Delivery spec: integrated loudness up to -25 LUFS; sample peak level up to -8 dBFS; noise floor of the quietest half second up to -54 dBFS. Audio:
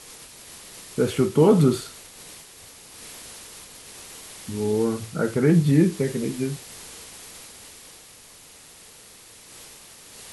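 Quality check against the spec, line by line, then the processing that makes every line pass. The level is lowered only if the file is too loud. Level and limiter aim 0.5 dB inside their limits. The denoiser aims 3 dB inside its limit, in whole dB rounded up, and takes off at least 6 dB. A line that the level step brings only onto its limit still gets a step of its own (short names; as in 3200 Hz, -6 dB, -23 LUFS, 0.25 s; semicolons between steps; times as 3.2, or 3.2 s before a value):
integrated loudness -22.0 LUFS: fail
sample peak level -6.5 dBFS: fail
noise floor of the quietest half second -48 dBFS: fail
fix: denoiser 6 dB, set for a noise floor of -48 dBFS; gain -3.5 dB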